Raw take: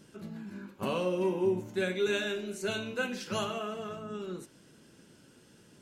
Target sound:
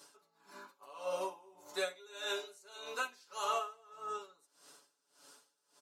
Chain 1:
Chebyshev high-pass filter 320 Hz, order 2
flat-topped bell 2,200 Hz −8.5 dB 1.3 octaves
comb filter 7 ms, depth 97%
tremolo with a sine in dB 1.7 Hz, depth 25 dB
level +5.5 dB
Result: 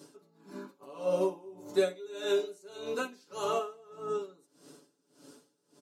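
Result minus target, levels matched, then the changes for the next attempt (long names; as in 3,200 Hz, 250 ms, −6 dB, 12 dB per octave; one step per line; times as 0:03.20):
250 Hz band +9.5 dB
change: Chebyshev high-pass filter 940 Hz, order 2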